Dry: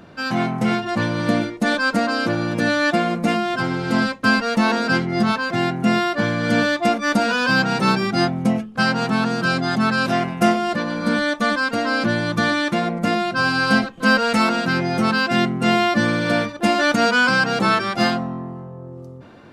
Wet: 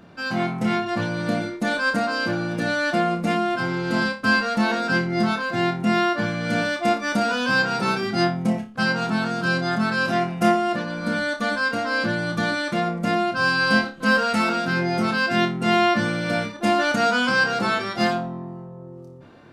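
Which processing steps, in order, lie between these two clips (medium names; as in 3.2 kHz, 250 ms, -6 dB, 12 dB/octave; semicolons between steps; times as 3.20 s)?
flutter echo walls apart 4.9 m, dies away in 0.27 s; trim -5 dB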